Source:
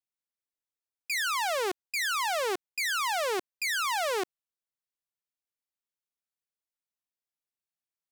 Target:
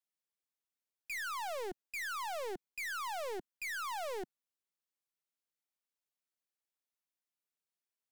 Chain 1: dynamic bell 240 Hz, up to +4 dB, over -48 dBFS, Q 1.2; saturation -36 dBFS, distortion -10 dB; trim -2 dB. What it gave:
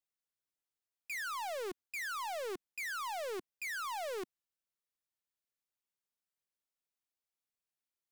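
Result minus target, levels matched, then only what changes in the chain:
125 Hz band -4.0 dB
add after dynamic bell: high-pass 160 Hz 24 dB/octave

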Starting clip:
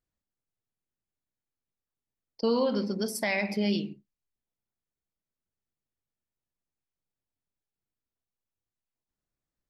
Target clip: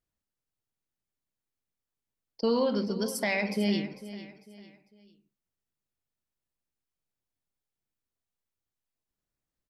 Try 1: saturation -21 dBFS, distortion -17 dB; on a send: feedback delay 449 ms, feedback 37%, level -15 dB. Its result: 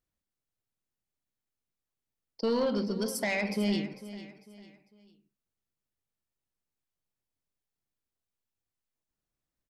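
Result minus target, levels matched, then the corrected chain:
saturation: distortion +19 dB
saturation -10 dBFS, distortion -36 dB; on a send: feedback delay 449 ms, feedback 37%, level -15 dB

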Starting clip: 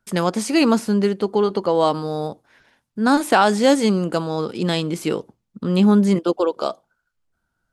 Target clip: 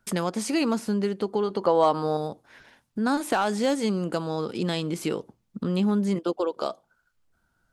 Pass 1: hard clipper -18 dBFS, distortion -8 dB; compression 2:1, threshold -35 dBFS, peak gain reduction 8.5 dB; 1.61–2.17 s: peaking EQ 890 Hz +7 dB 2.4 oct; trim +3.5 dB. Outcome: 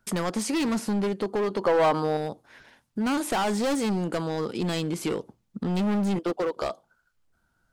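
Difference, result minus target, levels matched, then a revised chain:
hard clipper: distortion +23 dB
hard clipper -6.5 dBFS, distortion -30 dB; compression 2:1, threshold -35 dBFS, peak gain reduction 13.5 dB; 1.61–2.17 s: peaking EQ 890 Hz +7 dB 2.4 oct; trim +3.5 dB

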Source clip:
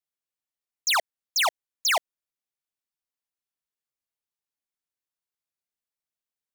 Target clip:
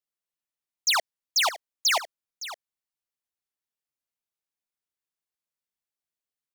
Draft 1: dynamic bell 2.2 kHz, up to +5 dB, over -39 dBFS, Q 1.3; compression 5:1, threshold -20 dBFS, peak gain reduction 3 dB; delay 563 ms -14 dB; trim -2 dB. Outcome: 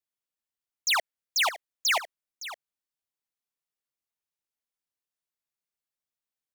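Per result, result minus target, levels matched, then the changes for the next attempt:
compression: peak gain reduction +3 dB; 2 kHz band +2.5 dB
remove: compression 5:1, threshold -20 dBFS, peak gain reduction 3 dB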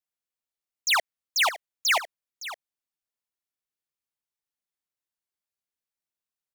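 2 kHz band +3.5 dB
change: dynamic bell 4.9 kHz, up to +5 dB, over -39 dBFS, Q 1.3

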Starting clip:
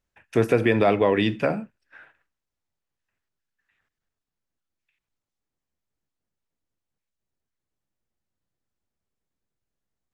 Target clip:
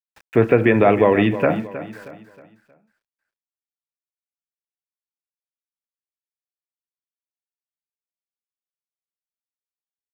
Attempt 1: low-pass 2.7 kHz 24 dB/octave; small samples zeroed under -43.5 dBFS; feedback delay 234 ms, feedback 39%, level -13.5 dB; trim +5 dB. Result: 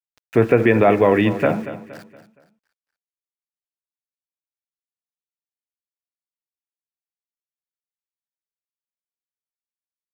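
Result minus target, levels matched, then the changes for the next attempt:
echo 81 ms early; small samples zeroed: distortion +7 dB
change: small samples zeroed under -50 dBFS; change: feedback delay 315 ms, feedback 39%, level -13.5 dB

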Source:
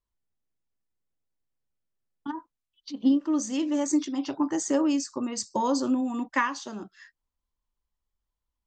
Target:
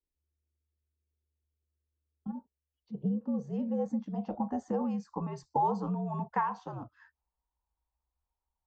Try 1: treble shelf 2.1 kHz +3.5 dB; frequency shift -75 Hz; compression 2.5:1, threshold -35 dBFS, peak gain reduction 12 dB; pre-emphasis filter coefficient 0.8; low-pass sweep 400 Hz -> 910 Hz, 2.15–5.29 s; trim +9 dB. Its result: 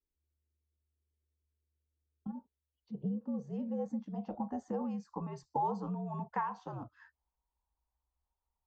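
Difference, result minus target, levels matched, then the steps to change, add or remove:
compression: peak gain reduction +5 dB
change: compression 2.5:1, threshold -27 dBFS, peak gain reduction 7 dB

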